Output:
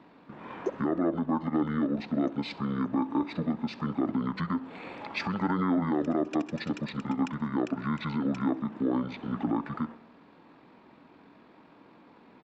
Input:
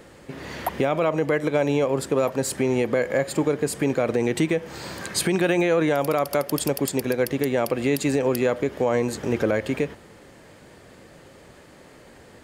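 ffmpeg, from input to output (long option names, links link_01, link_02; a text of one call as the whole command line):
ffmpeg -i in.wav -filter_complex "[0:a]acrossover=split=340 6500:gain=0.0708 1 0.1[link_01][link_02][link_03];[link_01][link_02][link_03]amix=inputs=3:normalize=0,acontrast=36,asetrate=23361,aresample=44100,atempo=1.88775,aecho=1:1:65|130|195|260|325:0.0841|0.0505|0.0303|0.0182|0.0109,volume=-9dB" out.wav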